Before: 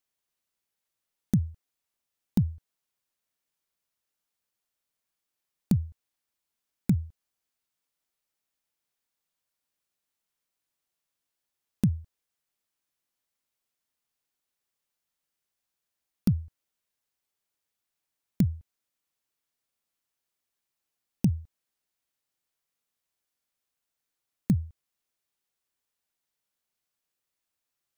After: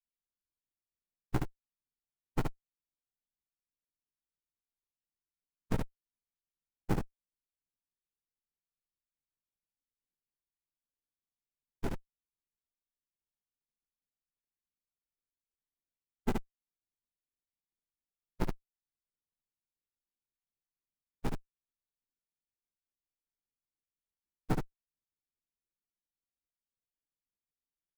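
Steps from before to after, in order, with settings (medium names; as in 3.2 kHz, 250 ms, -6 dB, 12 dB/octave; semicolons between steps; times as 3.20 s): formants replaced by sine waves; high-order bell 840 Hz -15.5 dB 3 oct; compression 2:1, threshold -41 dBFS, peak gain reduction 13.5 dB; noise-vocoded speech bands 2; treble shelf 3 kHz +6.5 dB; short-mantissa float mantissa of 2-bit; on a send: early reflections 16 ms -4 dB, 72 ms -3.5 dB; on the sum: sliding maximum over 65 samples; trim +3 dB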